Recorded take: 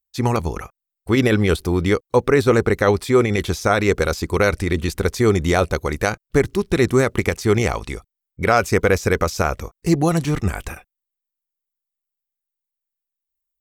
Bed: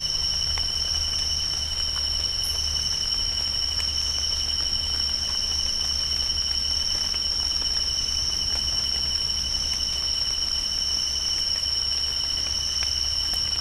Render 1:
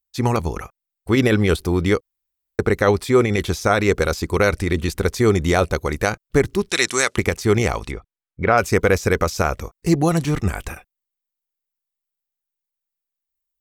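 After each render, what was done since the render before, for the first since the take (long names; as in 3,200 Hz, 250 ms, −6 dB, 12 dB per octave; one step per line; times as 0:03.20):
0:02.02–0:02.59: fill with room tone
0:06.69–0:07.17: meter weighting curve ITU-R 468
0:07.91–0:08.58: low-pass filter 2,500 Hz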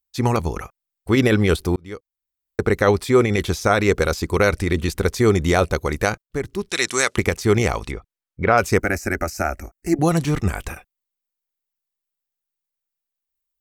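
0:01.76–0:02.74: fade in
0:06.22–0:07.07: fade in linear, from −14 dB
0:08.79–0:09.99: phaser with its sweep stopped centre 700 Hz, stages 8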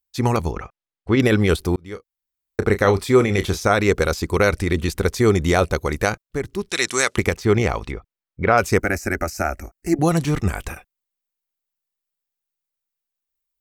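0:00.51–0:01.20: high-frequency loss of the air 150 metres
0:01.90–0:03.60: double-tracking delay 31 ms −11 dB
0:07.33–0:08.44: parametric band 10,000 Hz −9.5 dB 1.6 octaves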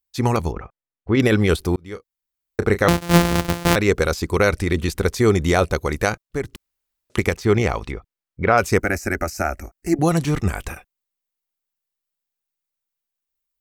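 0:00.52–0:01.15: head-to-tape spacing loss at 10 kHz 29 dB
0:02.88–0:03.76: samples sorted by size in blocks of 256 samples
0:06.56–0:07.10: fill with room tone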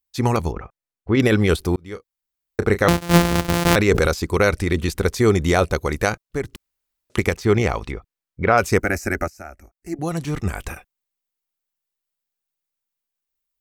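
0:03.42–0:04.11: level that may fall only so fast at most 30 dB per second
0:09.28–0:10.72: fade in quadratic, from −15 dB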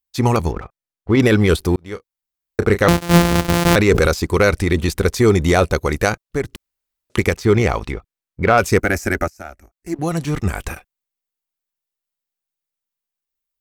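leveller curve on the samples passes 1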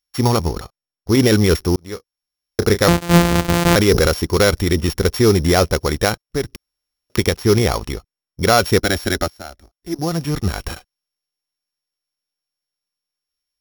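samples sorted by size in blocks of 8 samples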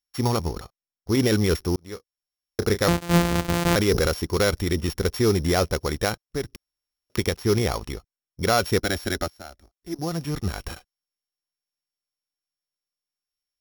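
level −7 dB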